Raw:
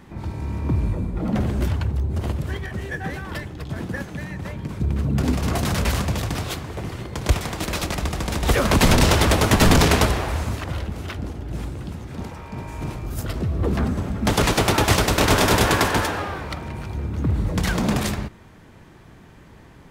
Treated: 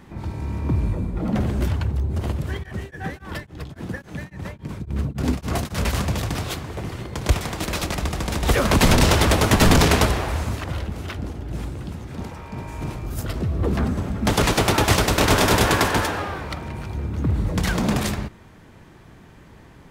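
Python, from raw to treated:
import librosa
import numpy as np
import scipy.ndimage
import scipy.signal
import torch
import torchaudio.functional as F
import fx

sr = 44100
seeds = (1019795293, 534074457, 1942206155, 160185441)

y = fx.tremolo_abs(x, sr, hz=3.6, at=(2.62, 5.92), fade=0.02)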